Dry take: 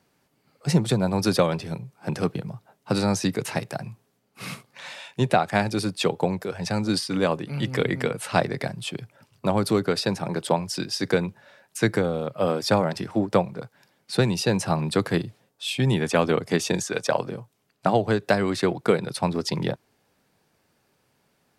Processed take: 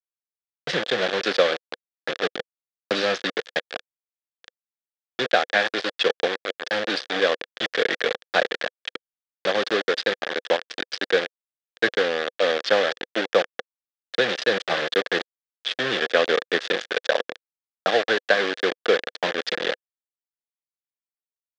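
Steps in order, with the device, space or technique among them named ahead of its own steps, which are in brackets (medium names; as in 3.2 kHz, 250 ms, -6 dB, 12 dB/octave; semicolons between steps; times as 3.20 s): 2.38–3.02 s: dynamic bell 250 Hz, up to +4 dB, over -35 dBFS, Q 1.2; hand-held game console (bit crusher 4-bit; cabinet simulation 440–4900 Hz, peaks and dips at 500 Hz +7 dB, 940 Hz -9 dB, 1.7 kHz +9 dB, 3.4 kHz +7 dB)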